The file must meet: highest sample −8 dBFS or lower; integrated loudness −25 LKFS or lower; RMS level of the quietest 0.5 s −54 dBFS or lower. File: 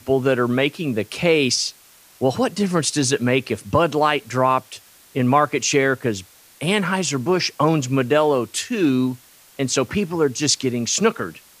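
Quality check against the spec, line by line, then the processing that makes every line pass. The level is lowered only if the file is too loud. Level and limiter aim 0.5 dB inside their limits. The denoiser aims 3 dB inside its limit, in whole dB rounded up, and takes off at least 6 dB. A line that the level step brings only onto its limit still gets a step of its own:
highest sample −4.0 dBFS: out of spec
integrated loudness −20.0 LKFS: out of spec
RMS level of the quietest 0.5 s −50 dBFS: out of spec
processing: level −5.5 dB

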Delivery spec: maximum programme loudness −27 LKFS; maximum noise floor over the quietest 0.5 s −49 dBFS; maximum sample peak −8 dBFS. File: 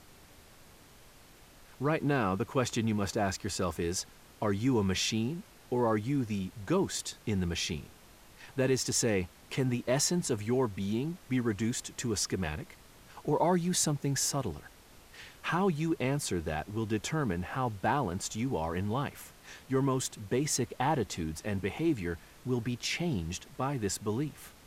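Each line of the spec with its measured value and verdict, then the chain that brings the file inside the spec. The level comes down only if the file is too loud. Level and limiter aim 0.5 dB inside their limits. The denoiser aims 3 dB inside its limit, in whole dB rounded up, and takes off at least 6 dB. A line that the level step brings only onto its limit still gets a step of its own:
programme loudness −32.0 LKFS: in spec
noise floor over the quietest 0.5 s −56 dBFS: in spec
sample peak −16.0 dBFS: in spec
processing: no processing needed

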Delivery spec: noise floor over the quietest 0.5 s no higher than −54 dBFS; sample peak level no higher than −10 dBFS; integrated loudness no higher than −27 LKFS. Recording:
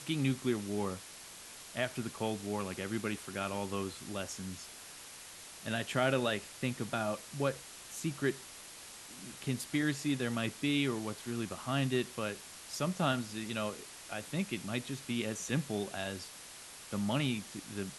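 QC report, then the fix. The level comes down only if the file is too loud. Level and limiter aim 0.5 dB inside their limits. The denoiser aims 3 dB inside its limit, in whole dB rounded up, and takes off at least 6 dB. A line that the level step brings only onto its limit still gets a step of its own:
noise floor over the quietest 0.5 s −50 dBFS: out of spec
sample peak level −16.0 dBFS: in spec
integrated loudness −36.0 LKFS: in spec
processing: broadband denoise 7 dB, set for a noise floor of −50 dBFS

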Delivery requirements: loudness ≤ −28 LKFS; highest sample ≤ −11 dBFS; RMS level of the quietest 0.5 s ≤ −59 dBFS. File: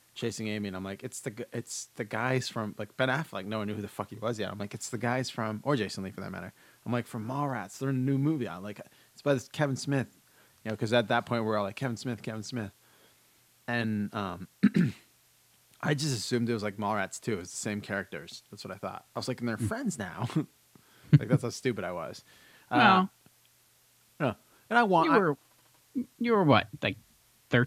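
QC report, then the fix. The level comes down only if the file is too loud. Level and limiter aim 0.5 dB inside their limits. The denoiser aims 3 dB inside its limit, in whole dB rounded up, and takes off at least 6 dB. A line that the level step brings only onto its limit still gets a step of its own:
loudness −30.5 LKFS: in spec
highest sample −6.5 dBFS: out of spec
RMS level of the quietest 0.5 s −65 dBFS: in spec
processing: brickwall limiter −11.5 dBFS

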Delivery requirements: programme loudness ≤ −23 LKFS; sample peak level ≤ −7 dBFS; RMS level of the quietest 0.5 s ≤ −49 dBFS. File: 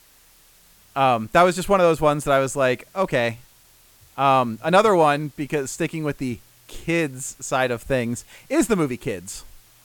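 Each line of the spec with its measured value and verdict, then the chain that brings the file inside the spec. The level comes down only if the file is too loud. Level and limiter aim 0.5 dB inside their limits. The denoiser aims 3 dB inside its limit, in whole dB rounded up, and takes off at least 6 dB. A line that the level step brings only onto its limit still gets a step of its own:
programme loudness −21.0 LKFS: out of spec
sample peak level −4.5 dBFS: out of spec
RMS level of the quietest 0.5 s −54 dBFS: in spec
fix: level −2.5 dB
brickwall limiter −7.5 dBFS

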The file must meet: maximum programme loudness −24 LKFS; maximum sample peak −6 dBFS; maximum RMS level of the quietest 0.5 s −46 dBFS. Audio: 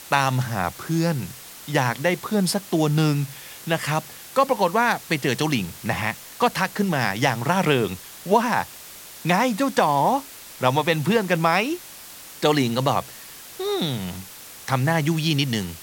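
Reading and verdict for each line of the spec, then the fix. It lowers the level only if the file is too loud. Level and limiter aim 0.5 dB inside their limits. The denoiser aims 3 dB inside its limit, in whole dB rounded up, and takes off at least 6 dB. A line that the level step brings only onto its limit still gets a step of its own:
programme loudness −22.5 LKFS: out of spec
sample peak −4.0 dBFS: out of spec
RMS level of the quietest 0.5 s −41 dBFS: out of spec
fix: broadband denoise 6 dB, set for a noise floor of −41 dBFS
level −2 dB
brickwall limiter −6.5 dBFS

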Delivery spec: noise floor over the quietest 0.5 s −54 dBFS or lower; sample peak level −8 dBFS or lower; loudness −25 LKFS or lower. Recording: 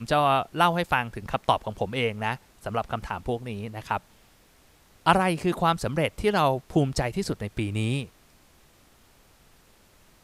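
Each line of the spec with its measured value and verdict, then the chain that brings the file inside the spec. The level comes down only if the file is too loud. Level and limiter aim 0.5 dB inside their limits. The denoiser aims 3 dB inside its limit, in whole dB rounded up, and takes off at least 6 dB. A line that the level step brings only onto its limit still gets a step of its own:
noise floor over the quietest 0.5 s −58 dBFS: in spec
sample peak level −5.5 dBFS: out of spec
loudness −26.5 LKFS: in spec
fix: brickwall limiter −8.5 dBFS

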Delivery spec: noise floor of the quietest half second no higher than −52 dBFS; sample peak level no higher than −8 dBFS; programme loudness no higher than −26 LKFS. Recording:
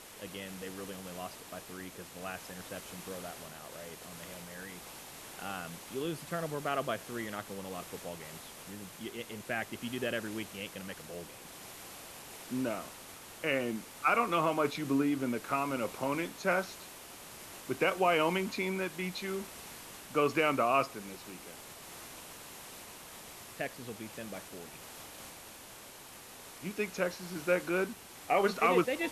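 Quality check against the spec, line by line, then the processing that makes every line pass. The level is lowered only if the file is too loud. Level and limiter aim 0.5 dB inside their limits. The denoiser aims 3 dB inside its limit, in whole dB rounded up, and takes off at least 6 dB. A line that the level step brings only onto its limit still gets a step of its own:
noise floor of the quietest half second −51 dBFS: out of spec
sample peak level −15.5 dBFS: in spec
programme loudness −34.5 LKFS: in spec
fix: broadband denoise 6 dB, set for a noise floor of −51 dBFS

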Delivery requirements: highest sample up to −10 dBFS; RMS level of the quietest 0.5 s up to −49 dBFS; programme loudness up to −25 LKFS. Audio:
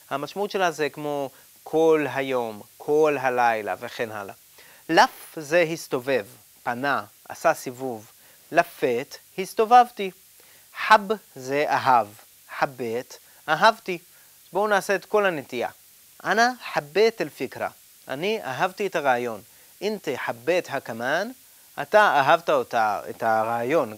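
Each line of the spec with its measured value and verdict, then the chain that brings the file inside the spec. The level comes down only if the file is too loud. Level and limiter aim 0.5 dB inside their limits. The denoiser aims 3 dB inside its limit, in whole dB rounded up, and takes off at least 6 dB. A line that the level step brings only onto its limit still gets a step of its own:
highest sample −4.5 dBFS: out of spec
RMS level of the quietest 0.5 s −52 dBFS: in spec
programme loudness −23.5 LKFS: out of spec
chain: level −2 dB
brickwall limiter −10.5 dBFS

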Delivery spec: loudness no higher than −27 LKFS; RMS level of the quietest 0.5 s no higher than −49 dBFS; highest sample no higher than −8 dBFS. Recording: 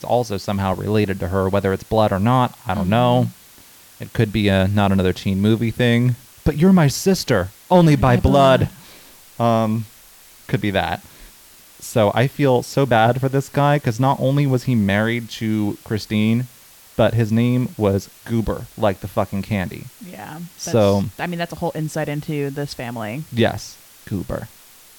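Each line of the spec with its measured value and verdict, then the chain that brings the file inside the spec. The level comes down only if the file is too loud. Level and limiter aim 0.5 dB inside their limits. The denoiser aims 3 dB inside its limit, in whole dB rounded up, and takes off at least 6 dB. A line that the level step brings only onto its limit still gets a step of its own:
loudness −19.0 LKFS: out of spec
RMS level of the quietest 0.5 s −46 dBFS: out of spec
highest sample −5.0 dBFS: out of spec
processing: level −8.5 dB

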